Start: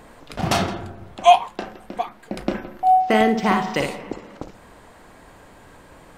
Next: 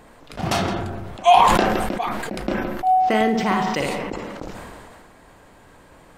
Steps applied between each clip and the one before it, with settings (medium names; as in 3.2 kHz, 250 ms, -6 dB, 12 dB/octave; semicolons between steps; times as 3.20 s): decay stretcher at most 25 dB/s; trim -2.5 dB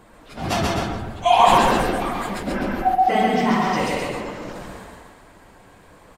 phase randomisation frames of 50 ms; on a send: loudspeakers at several distances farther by 46 m -2 dB, 88 m -7 dB; on the sum: trim -2 dB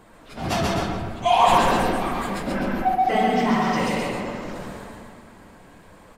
reverberation RT60 2.4 s, pre-delay 3 ms, DRR 9 dB; in parallel at -6 dB: saturation -18.5 dBFS, distortion -8 dB; on the sum: trim -4.5 dB